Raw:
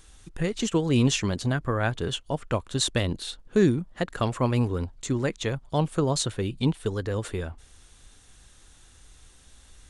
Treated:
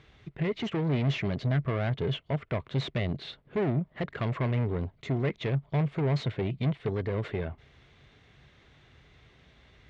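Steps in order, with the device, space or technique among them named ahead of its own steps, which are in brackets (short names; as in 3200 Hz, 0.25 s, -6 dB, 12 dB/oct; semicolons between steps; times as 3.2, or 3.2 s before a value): guitar amplifier (tube stage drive 29 dB, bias 0.25; tone controls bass +7 dB, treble +8 dB; speaker cabinet 94–3400 Hz, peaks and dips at 140 Hz +7 dB, 410 Hz +8 dB, 640 Hz +8 dB, 1100 Hz +3 dB, 2100 Hz +10 dB); gain -3 dB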